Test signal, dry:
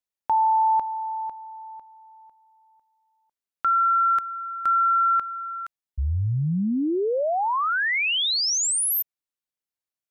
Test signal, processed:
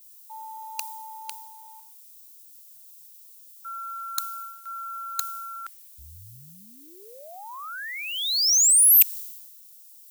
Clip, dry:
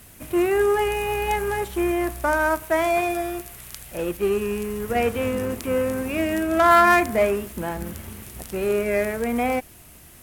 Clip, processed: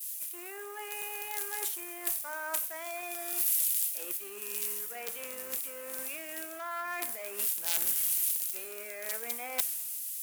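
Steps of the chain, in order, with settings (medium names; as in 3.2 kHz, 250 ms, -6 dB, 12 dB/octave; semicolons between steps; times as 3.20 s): gate with hold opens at -42 dBFS, range -21 dB; peak limiter -17 dBFS; tone controls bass -12 dB, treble +4 dB; reverse; compression 12:1, threshold -34 dBFS; reverse; integer overflow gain 27.5 dB; added noise blue -57 dBFS; tilt EQ +4 dB/octave; three bands expanded up and down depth 100%; trim -3 dB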